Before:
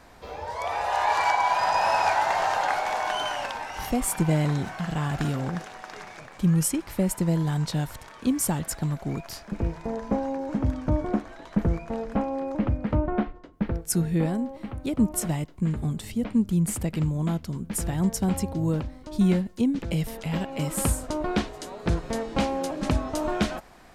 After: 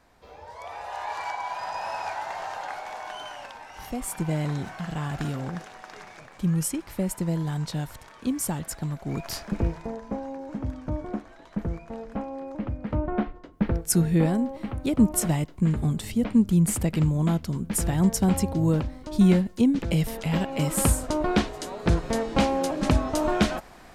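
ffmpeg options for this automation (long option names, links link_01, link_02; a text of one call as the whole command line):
ffmpeg -i in.wav -af "volume=14.5dB,afade=type=in:start_time=3.6:duration=1.01:silence=0.473151,afade=type=in:start_time=9.05:duration=0.3:silence=0.375837,afade=type=out:start_time=9.35:duration=0.65:silence=0.266073,afade=type=in:start_time=12.74:duration=0.95:silence=0.354813" out.wav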